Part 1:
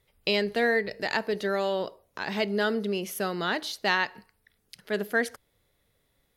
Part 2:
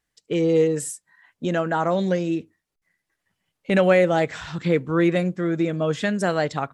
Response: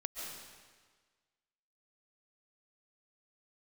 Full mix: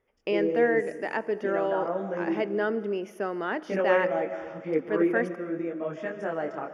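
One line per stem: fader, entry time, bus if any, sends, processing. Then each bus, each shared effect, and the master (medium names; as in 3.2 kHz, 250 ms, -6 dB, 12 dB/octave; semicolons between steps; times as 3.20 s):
-1.5 dB, 0.00 s, send -17 dB, none
-8.0 dB, 0.00 s, send -3.5 dB, detune thickener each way 29 cents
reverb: on, RT60 1.5 s, pre-delay 100 ms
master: boxcar filter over 11 samples; resonant low shelf 200 Hz -9 dB, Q 1.5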